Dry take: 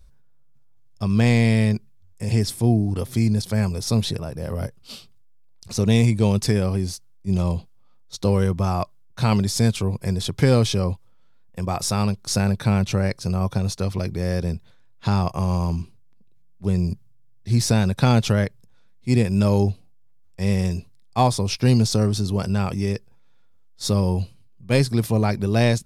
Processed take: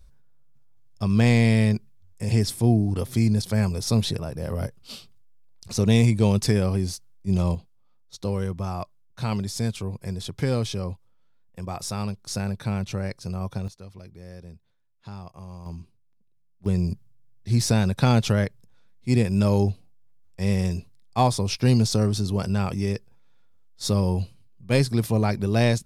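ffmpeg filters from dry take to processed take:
-af "asetnsamples=n=441:p=0,asendcmd='7.55 volume volume -7.5dB;13.68 volume volume -18.5dB;15.66 volume volume -12dB;16.66 volume volume -2dB',volume=0.891"

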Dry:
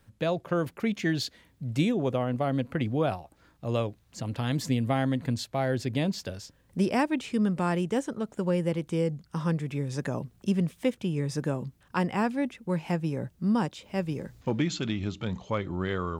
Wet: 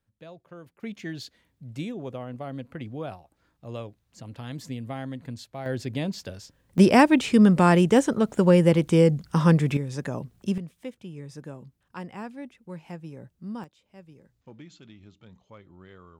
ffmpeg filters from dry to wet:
-af "asetnsamples=n=441:p=0,asendcmd='0.83 volume volume -8dB;5.66 volume volume -1.5dB;6.78 volume volume 9.5dB;9.77 volume volume 0dB;10.58 volume volume -10.5dB;13.64 volume volume -19dB',volume=0.133"

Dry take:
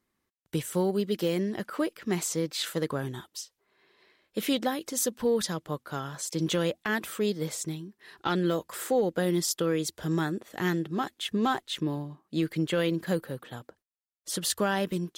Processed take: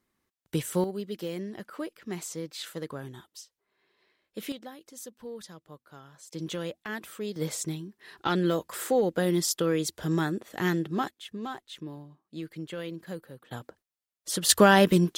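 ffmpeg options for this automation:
-af "asetnsamples=n=441:p=0,asendcmd='0.84 volume volume -7dB;4.52 volume volume -15dB;6.33 volume volume -7dB;7.36 volume volume 1dB;11.11 volume volume -10dB;13.51 volume volume 2dB;14.49 volume volume 9.5dB',volume=1.12"

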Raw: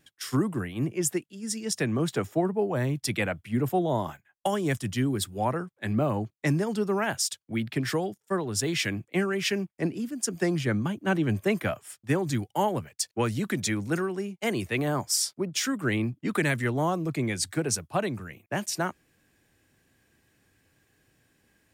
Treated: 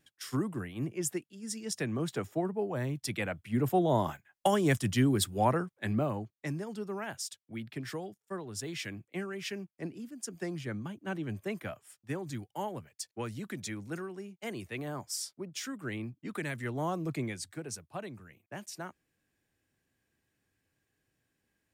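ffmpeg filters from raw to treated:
-af "volume=2.24,afade=t=in:st=3.23:d=0.84:silence=0.446684,afade=t=out:st=5.53:d=0.78:silence=0.266073,afade=t=in:st=16.52:d=0.6:silence=0.473151,afade=t=out:st=17.12:d=0.32:silence=0.375837"

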